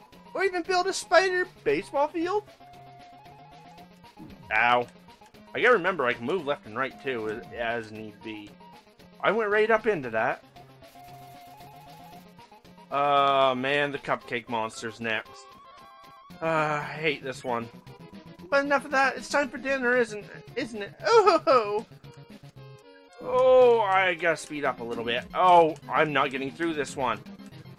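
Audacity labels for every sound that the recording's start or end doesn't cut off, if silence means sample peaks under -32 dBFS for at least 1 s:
4.510000	10.350000	sound
12.920000	15.210000	sound
16.420000	21.820000	sound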